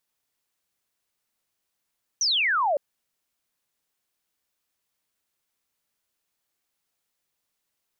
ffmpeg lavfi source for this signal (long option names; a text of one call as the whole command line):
ffmpeg -f lavfi -i "aevalsrc='0.1*clip(t/0.002,0,1)*clip((0.56-t)/0.002,0,1)*sin(2*PI*6200*0.56/log(540/6200)*(exp(log(540/6200)*t/0.56)-1))':duration=0.56:sample_rate=44100" out.wav